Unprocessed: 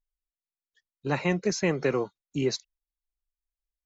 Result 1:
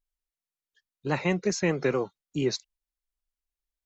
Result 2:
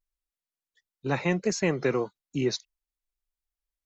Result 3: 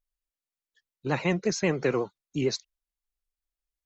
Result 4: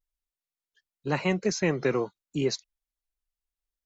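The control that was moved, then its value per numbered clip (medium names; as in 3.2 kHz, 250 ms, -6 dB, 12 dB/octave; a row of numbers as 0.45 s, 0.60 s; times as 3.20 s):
vibrato, rate: 4.7 Hz, 1.5 Hz, 11 Hz, 0.98 Hz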